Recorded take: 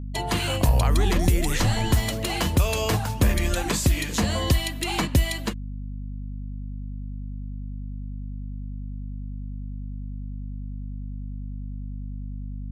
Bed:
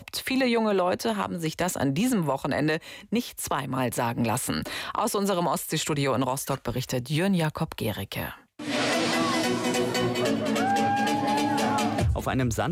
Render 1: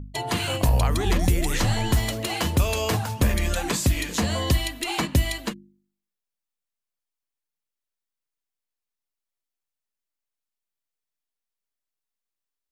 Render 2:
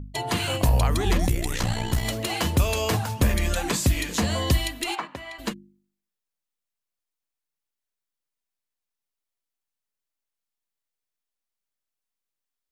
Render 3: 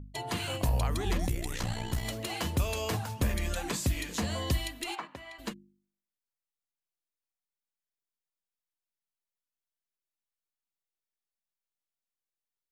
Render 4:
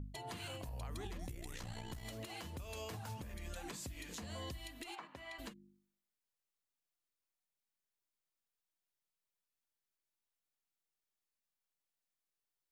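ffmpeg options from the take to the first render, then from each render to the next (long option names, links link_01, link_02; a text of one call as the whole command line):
ffmpeg -i in.wav -af "bandreject=frequency=50:width_type=h:width=4,bandreject=frequency=100:width_type=h:width=4,bandreject=frequency=150:width_type=h:width=4,bandreject=frequency=200:width_type=h:width=4,bandreject=frequency=250:width_type=h:width=4,bandreject=frequency=300:width_type=h:width=4,bandreject=frequency=350:width_type=h:width=4" out.wav
ffmpeg -i in.wav -filter_complex "[0:a]asplit=3[link_01][link_02][link_03];[link_01]afade=type=out:start_time=1.26:duration=0.02[link_04];[link_02]tremolo=f=61:d=0.75,afade=type=in:start_time=1.26:duration=0.02,afade=type=out:start_time=2.04:duration=0.02[link_05];[link_03]afade=type=in:start_time=2.04:duration=0.02[link_06];[link_04][link_05][link_06]amix=inputs=3:normalize=0,asplit=3[link_07][link_08][link_09];[link_07]afade=type=out:start_time=4.94:duration=0.02[link_10];[link_08]bandpass=frequency=1100:width_type=q:width=1.5,afade=type=in:start_time=4.94:duration=0.02,afade=type=out:start_time=5.38:duration=0.02[link_11];[link_09]afade=type=in:start_time=5.38:duration=0.02[link_12];[link_10][link_11][link_12]amix=inputs=3:normalize=0" out.wav
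ffmpeg -i in.wav -af "volume=-8dB" out.wav
ffmpeg -i in.wav -af "acompressor=threshold=-39dB:ratio=6,alimiter=level_in=11.5dB:limit=-24dB:level=0:latency=1:release=279,volume=-11.5dB" out.wav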